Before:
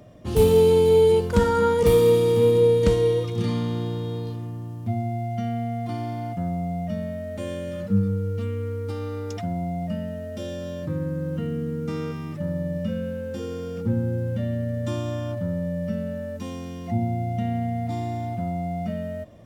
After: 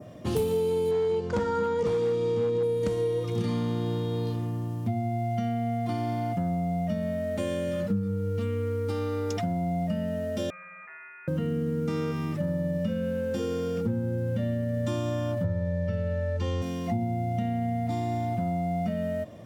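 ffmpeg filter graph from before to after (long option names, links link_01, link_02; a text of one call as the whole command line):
ffmpeg -i in.wav -filter_complex "[0:a]asettb=1/sr,asplit=3[link_01][link_02][link_03];[link_01]atrim=end=0.914[link_04];[link_02]atrim=start=0.91:end=2.63,asetpts=PTS-STARTPTS,afade=type=in:duration=0.004:curve=qsin,afade=type=out:start_time=1.716:duration=0.004:curve=qsin,lowpass=frequency=6800:width=0.5412,lowpass=frequency=6800:width=1.3066,asoftclip=type=hard:threshold=-12.5dB[link_05];[link_03]atrim=start=2.626[link_06];[link_04][link_05]acrossfade=duration=0.004:curve1=hsin:curve2=qsin[link_07];[link_07][link_06]acrossfade=duration=0.004:curve1=qsin:curve2=hsin,asettb=1/sr,asplit=3[link_08][link_09][link_10];[link_08]atrim=end=10.504[link_11];[link_09]atrim=start=10.5:end=11.28,asetpts=PTS-STARTPTS,afade=type=in:duration=0.004:curve=qsin,afade=type=out:start_time=0.776:duration=0.004:curve=qsin,highpass=frequency=1000:width=0.5412,highpass=frequency=1000:width=1.3066,lowpass=frequency=2600:width_type=q:width=0.5098,lowpass=frequency=2600:width_type=q:width=0.6013,lowpass=frequency=2600:width_type=q:width=0.9,lowpass=frequency=2600:width_type=q:width=2.563,afreqshift=-3000[link_12];[link_10]atrim=start=11.276[link_13];[link_11][link_12]acrossfade=duration=0.004:curve1=hsin:curve2=qsin[link_14];[link_14][link_13]acrossfade=duration=0.004:curve1=qsin:curve2=hsin,asettb=1/sr,asplit=3[link_15][link_16][link_17];[link_15]atrim=end=15.444[link_18];[link_16]atrim=start=15.44:end=16.62,asetpts=PTS-STARTPTS,afade=type=in:duration=0.004:curve=qsin,afade=type=out:start_time=1.176:duration=0.004:curve=qsin,lowpass=5400,equalizer=frequency=100:width_type=o:width=0.73:gain=12.5,aecho=1:1:2.2:0.76,atrim=end_sample=52038[link_19];[link_17]atrim=start=16.616[link_20];[link_18][link_19]acrossfade=duration=0.004:curve1=hsin:curve2=qsin[link_21];[link_21][link_20]acrossfade=duration=0.004:curve1=qsin:curve2=hsin,highpass=100,adynamicequalizer=threshold=0.00631:dfrequency=3400:dqfactor=1.1:tfrequency=3400:tqfactor=1.1:attack=5:release=100:ratio=0.375:range=2:mode=cutabove:tftype=bell,acompressor=threshold=-29dB:ratio=6,volume=4dB" out.wav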